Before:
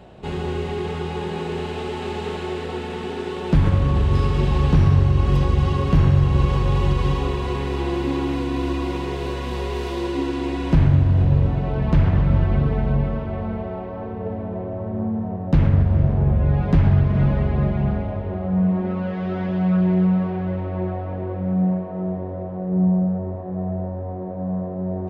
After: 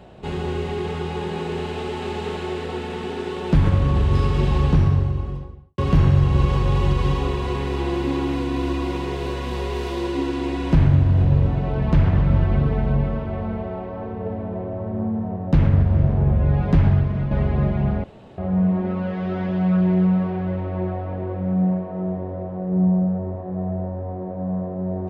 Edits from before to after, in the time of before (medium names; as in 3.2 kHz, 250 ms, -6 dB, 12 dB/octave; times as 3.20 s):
4.50–5.78 s: studio fade out
16.85–17.31 s: fade out linear, to -8.5 dB
18.04–18.38 s: room tone